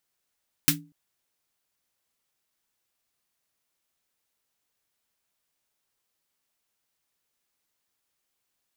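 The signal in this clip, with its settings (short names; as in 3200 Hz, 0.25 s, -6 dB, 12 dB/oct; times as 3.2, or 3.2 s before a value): snare drum length 0.24 s, tones 160 Hz, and 290 Hz, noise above 1400 Hz, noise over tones 9.5 dB, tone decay 0.35 s, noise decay 0.13 s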